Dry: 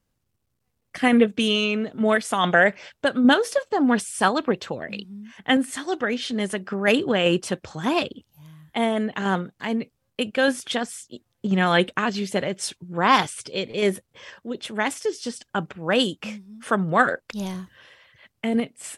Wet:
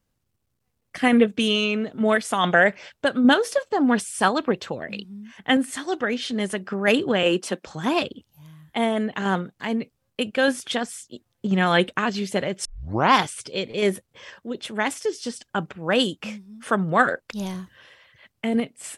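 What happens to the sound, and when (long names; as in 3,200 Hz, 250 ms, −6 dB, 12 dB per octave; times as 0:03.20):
0:07.23–0:07.67: Butterworth high-pass 190 Hz
0:12.65: tape start 0.47 s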